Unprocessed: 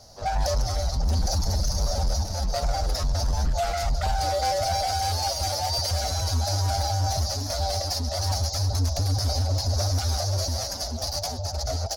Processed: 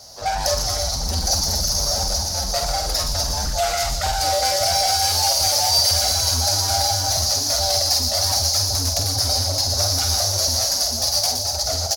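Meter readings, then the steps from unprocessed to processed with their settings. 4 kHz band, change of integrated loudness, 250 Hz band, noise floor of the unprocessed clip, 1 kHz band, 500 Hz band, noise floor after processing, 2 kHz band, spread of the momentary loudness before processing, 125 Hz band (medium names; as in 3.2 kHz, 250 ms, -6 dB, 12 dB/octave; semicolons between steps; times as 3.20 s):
+11.5 dB, +7.5 dB, +1.0 dB, -32 dBFS, +4.0 dB, +4.0 dB, -25 dBFS, +7.0 dB, 3 LU, -2.5 dB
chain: tilt EQ +2 dB/octave; doubling 48 ms -7 dB; feedback echo behind a high-pass 119 ms, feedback 68%, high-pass 3.8 kHz, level -5 dB; trim +4.5 dB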